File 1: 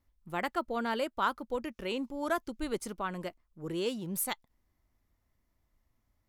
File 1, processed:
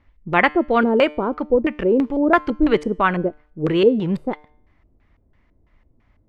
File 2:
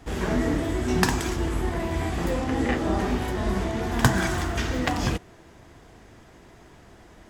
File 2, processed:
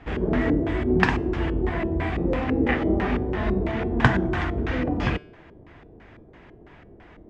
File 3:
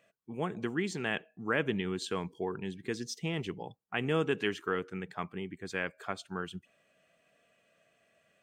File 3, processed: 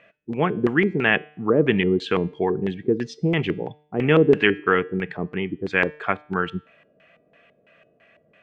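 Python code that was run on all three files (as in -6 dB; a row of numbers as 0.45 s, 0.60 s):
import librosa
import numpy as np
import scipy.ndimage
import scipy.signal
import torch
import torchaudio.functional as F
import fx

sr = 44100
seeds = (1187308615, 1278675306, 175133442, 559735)

y = fx.filter_lfo_lowpass(x, sr, shape='square', hz=3.0, low_hz=430.0, high_hz=2400.0, q=1.6)
y = fx.comb_fb(y, sr, f0_hz=150.0, decay_s=0.59, harmonics='all', damping=0.0, mix_pct=40)
y = librosa.util.normalize(y) * 10.0 ** (-1.5 / 20.0)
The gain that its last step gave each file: +20.5 dB, +5.0 dB, +16.0 dB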